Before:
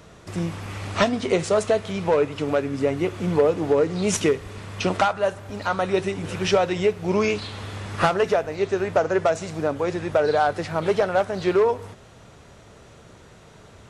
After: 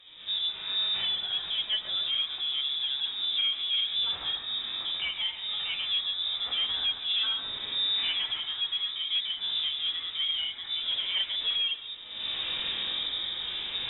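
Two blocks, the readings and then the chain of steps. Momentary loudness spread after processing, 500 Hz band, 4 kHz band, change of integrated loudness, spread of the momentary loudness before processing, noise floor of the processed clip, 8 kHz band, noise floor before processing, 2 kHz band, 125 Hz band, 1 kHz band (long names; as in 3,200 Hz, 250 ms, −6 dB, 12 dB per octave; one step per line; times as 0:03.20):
5 LU, −34.5 dB, +12.5 dB, −5.0 dB, 9 LU, −41 dBFS, below −40 dB, −48 dBFS, −8.5 dB, below −25 dB, −21.5 dB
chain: camcorder AGC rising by 42 dB per second
chorus effect 1.7 Hz, delay 15 ms, depth 6.5 ms
rotating-speaker cabinet horn 8 Hz, later 0.7 Hz, at 0:03.05
harmonic and percussive parts rebalanced percussive −17 dB
soft clipping −25 dBFS, distortion −13 dB
on a send: delay with a high-pass on its return 139 ms, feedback 46%, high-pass 2,200 Hz, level −4 dB
on the sum: voice inversion scrambler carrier 3,700 Hz
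level +1 dB
Ogg Vorbis 128 kbit/s 44,100 Hz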